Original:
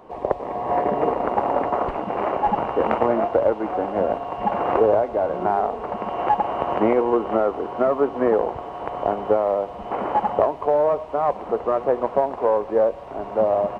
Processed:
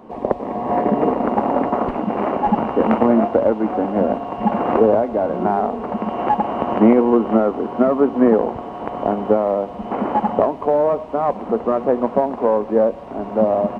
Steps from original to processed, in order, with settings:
parametric band 230 Hz +13 dB 0.79 octaves
level +1 dB

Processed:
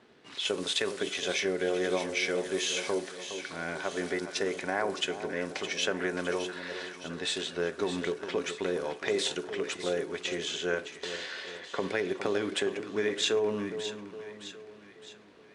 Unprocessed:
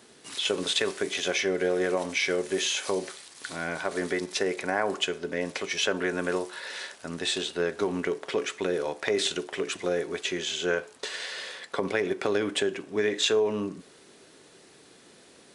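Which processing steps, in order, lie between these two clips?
low-pass that shuts in the quiet parts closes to 2,700 Hz, open at −24 dBFS
echo with a time of its own for lows and highs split 1,200 Hz, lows 413 ms, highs 614 ms, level −10 dB
level −3.5 dB

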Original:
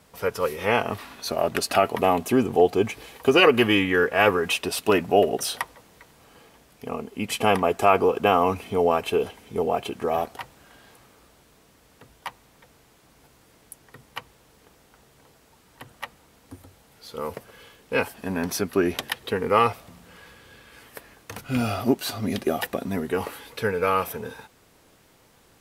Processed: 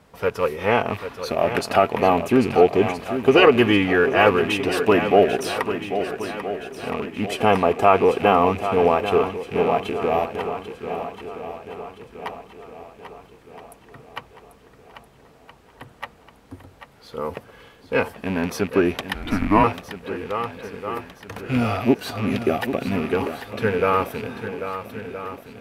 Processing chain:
loose part that buzzes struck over −35 dBFS, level −23 dBFS
high-shelf EQ 3,900 Hz −12 dB
feedback echo with a long and a short gap by turns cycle 1,319 ms, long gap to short 1.5 to 1, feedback 42%, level −10 dB
0:19.14–0:19.64: frequency shifter −200 Hz
level +3.5 dB

